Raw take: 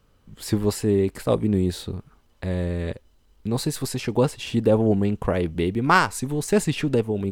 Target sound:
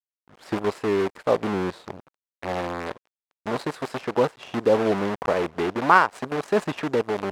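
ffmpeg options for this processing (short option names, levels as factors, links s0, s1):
-af "acrusher=bits=5:dc=4:mix=0:aa=0.000001,bandpass=f=870:t=q:w=0.73:csg=0,volume=1.41"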